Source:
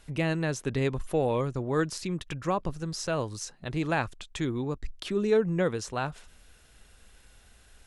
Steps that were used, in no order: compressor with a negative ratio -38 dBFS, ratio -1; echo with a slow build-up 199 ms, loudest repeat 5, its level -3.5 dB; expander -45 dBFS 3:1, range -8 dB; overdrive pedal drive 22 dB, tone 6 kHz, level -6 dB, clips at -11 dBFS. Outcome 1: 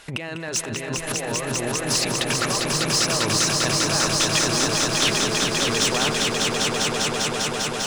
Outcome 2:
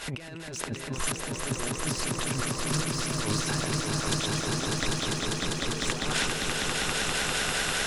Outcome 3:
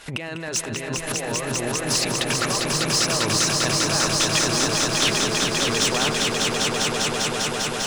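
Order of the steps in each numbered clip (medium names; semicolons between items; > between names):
expander > compressor with a negative ratio > overdrive pedal > echo with a slow build-up; overdrive pedal > expander > compressor with a negative ratio > echo with a slow build-up; compressor with a negative ratio > expander > overdrive pedal > echo with a slow build-up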